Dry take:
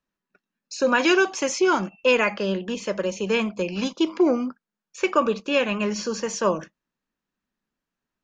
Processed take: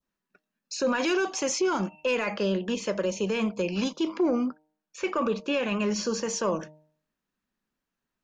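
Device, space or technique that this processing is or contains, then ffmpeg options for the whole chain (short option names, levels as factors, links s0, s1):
soft clipper into limiter: -filter_complex "[0:a]asoftclip=type=tanh:threshold=0.376,alimiter=limit=0.126:level=0:latency=1:release=24,asettb=1/sr,asplit=3[s0][s1][s2];[s0]atrim=end=4.074[s3];[s1]atrim=start=4.07:end=5.63,asetpts=PTS-STARTPTS,afade=t=in:d=0.004:c=qsin,afade=t=out:st=1.556:d=0.004:c=qsin,highshelf=f=4800:g=-5.5[s4];[s2]atrim=start=5.626[s5];[s3][s4]acrossfade=d=0.004:c1=hsin:c2=qsin[s6];[s6][s5]acrossfade=d=0.004:c1=qsin:c2=hsin,bandreject=f=153.5:t=h:w=4,bandreject=f=307:t=h:w=4,bandreject=f=460.5:t=h:w=4,bandreject=f=614:t=h:w=4,bandreject=f=767.5:t=h:w=4,bandreject=f=921:t=h:w=4,adynamicequalizer=threshold=0.00891:dfrequency=2000:dqfactor=0.99:tfrequency=2000:tqfactor=0.99:attack=5:release=100:ratio=0.375:range=2:mode=cutabove:tftype=bell"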